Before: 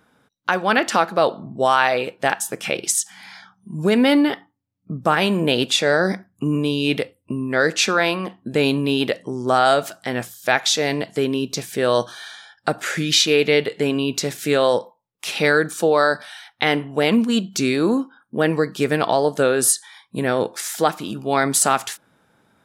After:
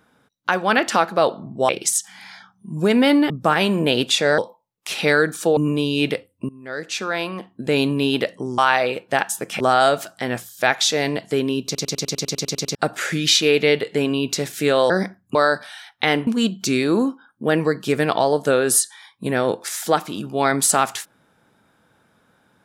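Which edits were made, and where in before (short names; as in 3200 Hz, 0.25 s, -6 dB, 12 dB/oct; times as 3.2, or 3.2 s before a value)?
1.69–2.71 move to 9.45
4.32–4.91 cut
5.99–6.44 swap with 14.75–15.94
7.36–8.74 fade in, from -21.5 dB
11.5 stutter in place 0.10 s, 11 plays
16.86–17.19 cut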